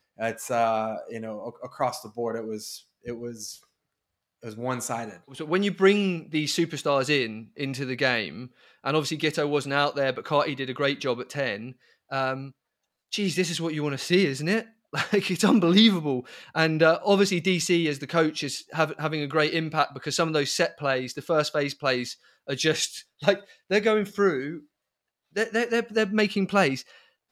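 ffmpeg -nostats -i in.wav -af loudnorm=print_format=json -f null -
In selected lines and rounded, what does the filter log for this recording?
"input_i" : "-25.5",
"input_tp" : "-6.2",
"input_lra" : "7.1",
"input_thresh" : "-36.1",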